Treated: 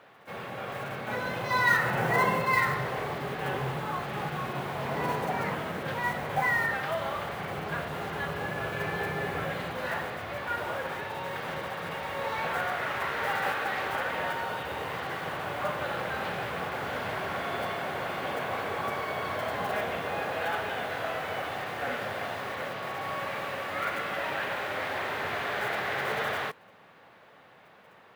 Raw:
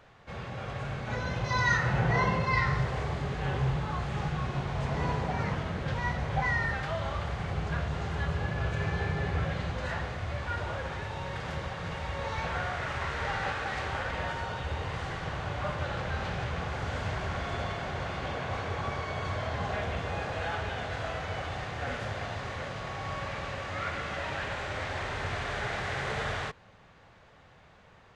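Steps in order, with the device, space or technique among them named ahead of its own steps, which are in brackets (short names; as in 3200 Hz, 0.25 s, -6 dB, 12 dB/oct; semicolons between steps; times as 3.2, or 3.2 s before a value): early digital voice recorder (BPF 230–3900 Hz; block floating point 5-bit); gain +3.5 dB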